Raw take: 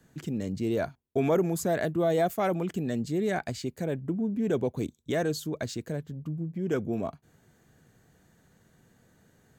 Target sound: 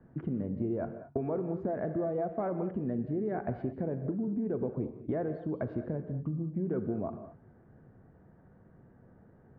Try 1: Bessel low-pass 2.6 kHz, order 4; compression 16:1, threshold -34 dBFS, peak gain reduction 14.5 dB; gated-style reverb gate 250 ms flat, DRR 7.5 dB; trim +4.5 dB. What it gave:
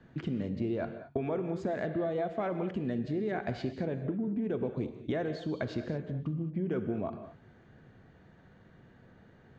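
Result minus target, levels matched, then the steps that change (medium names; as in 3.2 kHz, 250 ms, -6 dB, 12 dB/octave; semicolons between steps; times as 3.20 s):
2 kHz band +8.0 dB
change: Bessel low-pass 970 Hz, order 4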